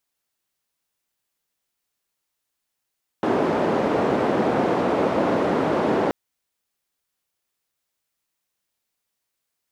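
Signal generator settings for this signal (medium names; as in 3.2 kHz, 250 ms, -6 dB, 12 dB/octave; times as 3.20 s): noise band 230–530 Hz, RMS -21 dBFS 2.88 s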